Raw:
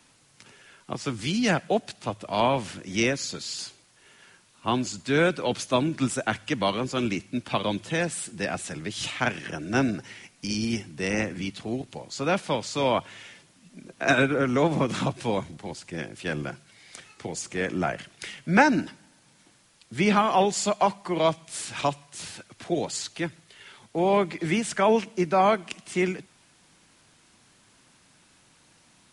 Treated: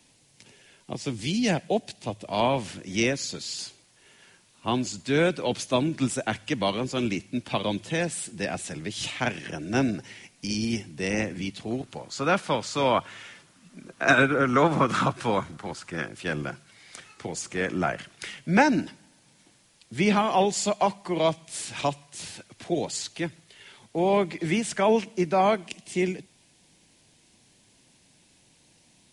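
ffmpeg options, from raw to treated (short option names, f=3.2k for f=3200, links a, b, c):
-af "asetnsamples=n=441:p=0,asendcmd='2.27 equalizer g -5;11.71 equalizer g 5.5;14.53 equalizer g 12.5;16.08 equalizer g 2.5;18.38 equalizer g -5;25.67 equalizer g -14',equalizer=f=1.3k:t=o:w=0.72:g=-12"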